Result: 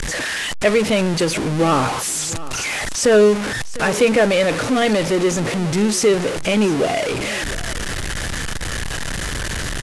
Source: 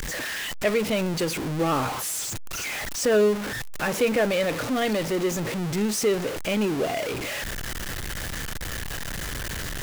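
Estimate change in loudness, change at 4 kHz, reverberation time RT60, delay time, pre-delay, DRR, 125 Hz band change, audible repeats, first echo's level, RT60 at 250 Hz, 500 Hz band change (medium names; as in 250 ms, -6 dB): +7.5 dB, +7.5 dB, no reverb, 703 ms, no reverb, no reverb, +7.5 dB, 1, -17.5 dB, no reverb, +7.5 dB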